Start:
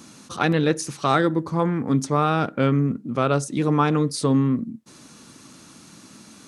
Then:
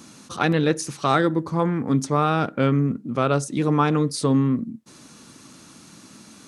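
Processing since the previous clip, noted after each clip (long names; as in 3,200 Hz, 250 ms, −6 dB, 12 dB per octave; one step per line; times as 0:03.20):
no processing that can be heard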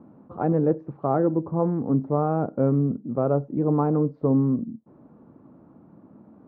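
transistor ladder low-pass 940 Hz, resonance 25%
level +4 dB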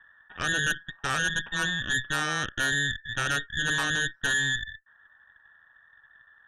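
frequency inversion band by band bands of 2,000 Hz
low-shelf EQ 350 Hz −7 dB
harmonic generator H 8 −12 dB, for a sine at −9.5 dBFS
level −7 dB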